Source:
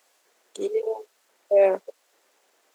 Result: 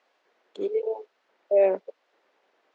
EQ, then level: air absorption 250 m; dynamic EQ 1200 Hz, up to -6 dB, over -37 dBFS, Q 1.2; 0.0 dB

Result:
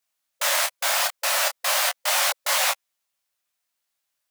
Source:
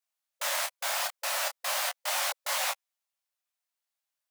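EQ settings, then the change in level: bell 830 Hz -2 dB; +8.5 dB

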